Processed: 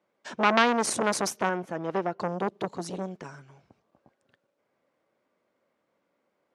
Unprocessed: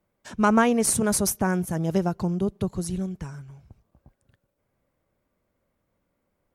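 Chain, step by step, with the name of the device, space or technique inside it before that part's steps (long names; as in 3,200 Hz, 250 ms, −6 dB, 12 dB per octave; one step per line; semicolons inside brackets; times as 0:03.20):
0:01.49–0:02.20: bass and treble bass −6 dB, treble −14 dB
public-address speaker with an overloaded transformer (saturating transformer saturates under 1,800 Hz; band-pass filter 300–5,400 Hz)
level +3 dB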